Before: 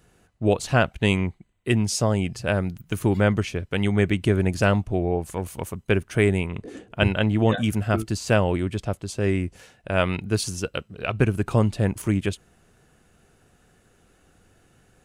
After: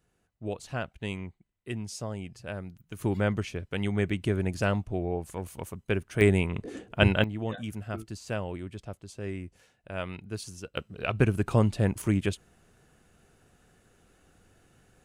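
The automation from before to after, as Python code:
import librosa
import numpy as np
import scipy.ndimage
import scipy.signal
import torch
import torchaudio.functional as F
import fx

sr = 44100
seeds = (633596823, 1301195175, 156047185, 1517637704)

y = fx.gain(x, sr, db=fx.steps((0.0, -14.0), (2.99, -7.0), (6.21, -1.0), (7.24, -13.0), (10.77, -3.0)))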